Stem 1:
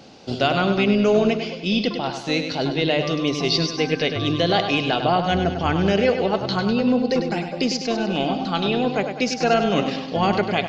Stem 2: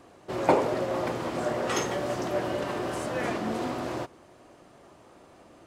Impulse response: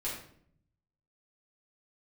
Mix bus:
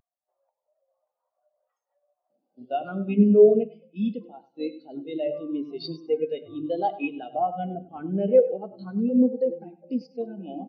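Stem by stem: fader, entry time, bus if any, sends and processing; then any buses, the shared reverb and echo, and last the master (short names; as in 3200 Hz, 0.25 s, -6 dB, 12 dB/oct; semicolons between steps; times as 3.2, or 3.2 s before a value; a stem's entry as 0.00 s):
-3.5 dB, 2.30 s, send -9 dB, HPF 160 Hz 12 dB/oct
-12.0 dB, 0.00 s, no send, compressor 12:1, threshold -31 dBFS, peak gain reduction 16 dB; HPF 580 Hz 24 dB/oct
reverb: on, RT60 0.60 s, pre-delay 4 ms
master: upward compressor, threshold -29 dBFS; spectral expander 2.5:1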